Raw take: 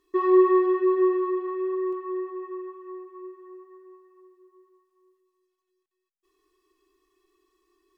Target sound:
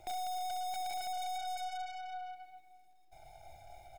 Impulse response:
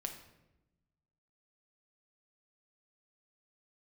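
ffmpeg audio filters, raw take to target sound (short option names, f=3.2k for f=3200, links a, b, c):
-filter_complex "[0:a]asetrate=88200,aresample=44100,bass=f=250:g=10,treble=f=4k:g=-4,aecho=1:1:231:0.075[a];[1:a]atrim=start_sample=2205[b];[a][b]afir=irnorm=-1:irlink=0,acrossover=split=680|1500[c][d][e];[c]acompressor=threshold=-28dB:ratio=4[f];[d]acompressor=threshold=-37dB:ratio=4[g];[e]acompressor=threshold=-41dB:ratio=4[h];[f][g][h]amix=inputs=3:normalize=0,aeval=exprs='(tanh(562*val(0)+0.45)-tanh(0.45))/562':c=same,equalizer=f=350:t=o:w=0.59:g=14.5,bandreject=f=2.2k:w=15,volume=16.5dB"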